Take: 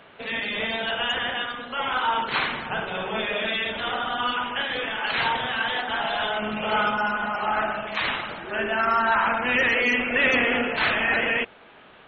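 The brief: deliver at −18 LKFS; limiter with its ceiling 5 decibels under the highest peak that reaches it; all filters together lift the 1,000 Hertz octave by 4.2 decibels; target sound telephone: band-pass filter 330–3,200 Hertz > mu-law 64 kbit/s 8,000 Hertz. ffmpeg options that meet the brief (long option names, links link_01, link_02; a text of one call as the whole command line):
ffmpeg -i in.wav -af "equalizer=frequency=1000:width_type=o:gain=5.5,alimiter=limit=-13dB:level=0:latency=1,highpass=330,lowpass=3200,volume=5.5dB" -ar 8000 -c:a pcm_mulaw out.wav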